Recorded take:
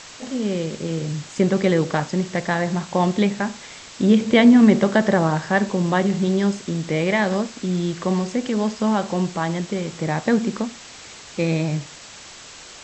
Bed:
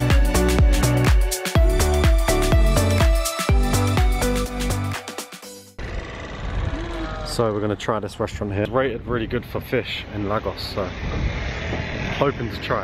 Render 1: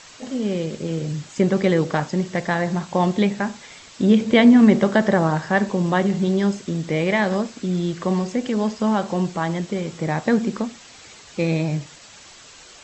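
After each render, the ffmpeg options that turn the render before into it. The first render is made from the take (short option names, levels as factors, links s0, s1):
-af "afftdn=nr=6:nf=-41"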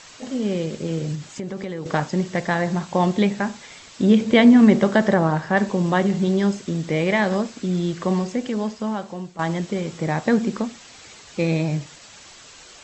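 -filter_complex "[0:a]asettb=1/sr,asplit=3[s0][s1][s2];[s0]atrim=end=1.154[s3];[s1]atrim=start=1.15:end=1.86,asetpts=PTS-STARTPTS,afade=t=in:d=0.004:c=qsin,afade=t=out:st=0.706:d=0.004:c=qsin,acompressor=threshold=0.0398:ratio=4:attack=3.2:release=140:knee=1:detection=peak[s4];[s2]atrim=start=1.856[s5];[s3][s4]acrossfade=d=0.004:c1=hsin:c2=qsin[s6];[s6][s5]acrossfade=d=0.004:c1=qsin:c2=hsin,asettb=1/sr,asplit=3[s7][s8][s9];[s7]atrim=end=5.144[s10];[s8]atrim=start=5.14:end=5.57,asetpts=PTS-STARTPTS,afade=t=in:d=0.004:c=qsin,afade=t=out:st=0.426:d=0.004:c=qsin,highshelf=f=4500:g=-8[s11];[s9]atrim=start=5.566[s12];[s10][s11]acrossfade=d=0.004:c1=hsin:c2=qsin[s13];[s13][s12]acrossfade=d=0.004:c1=qsin:c2=hsin,asplit=2[s14][s15];[s14]atrim=end=9.39,asetpts=PTS-STARTPTS,afade=t=out:st=8.14:d=1.25:silence=0.188365[s16];[s15]atrim=start=9.39,asetpts=PTS-STARTPTS,afade=t=in:d=0.004:c=hsin:silence=0.188365[s17];[s16][s17]concat=n=2:v=0:a=1"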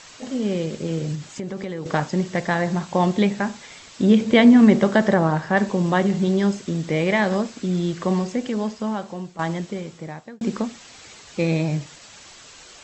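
-filter_complex "[0:a]asplit=2[s0][s1];[s0]atrim=end=10.41,asetpts=PTS-STARTPTS,afade=t=out:st=9.32:d=1.09[s2];[s1]atrim=start=10.41,asetpts=PTS-STARTPTS,afade=t=in:d=0.004:c=hsin[s3];[s2][s3]concat=n=2:v=0:a=1"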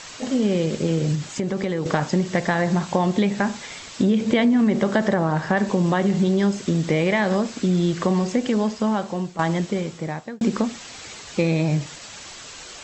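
-filter_complex "[0:a]asplit=2[s0][s1];[s1]alimiter=limit=0.237:level=0:latency=1:release=31,volume=0.891[s2];[s0][s2]amix=inputs=2:normalize=0,acompressor=threshold=0.158:ratio=5"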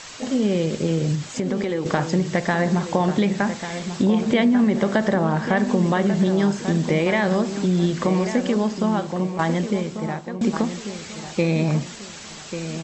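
-filter_complex "[0:a]asplit=2[s0][s1];[s1]adelay=1142,lowpass=f=2600:p=1,volume=0.335,asplit=2[s2][s3];[s3]adelay=1142,lowpass=f=2600:p=1,volume=0.37,asplit=2[s4][s5];[s5]adelay=1142,lowpass=f=2600:p=1,volume=0.37,asplit=2[s6][s7];[s7]adelay=1142,lowpass=f=2600:p=1,volume=0.37[s8];[s0][s2][s4][s6][s8]amix=inputs=5:normalize=0"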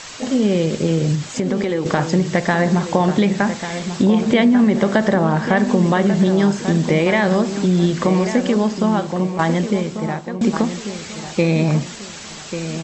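-af "volume=1.58,alimiter=limit=0.794:level=0:latency=1"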